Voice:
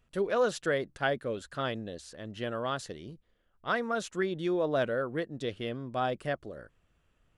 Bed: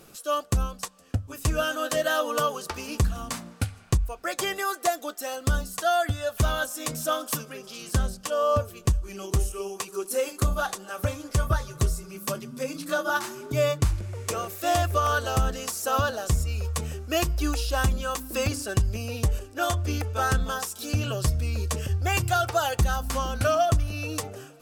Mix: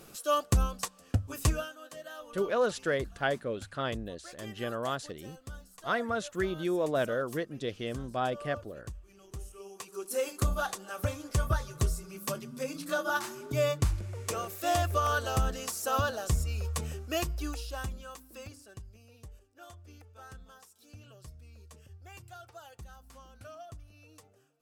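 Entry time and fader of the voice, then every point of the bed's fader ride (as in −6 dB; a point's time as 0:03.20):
2.20 s, −0.5 dB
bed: 0:01.48 −1 dB
0:01.74 −20 dB
0:09.26 −20 dB
0:10.21 −4.5 dB
0:16.98 −4.5 dB
0:18.96 −25 dB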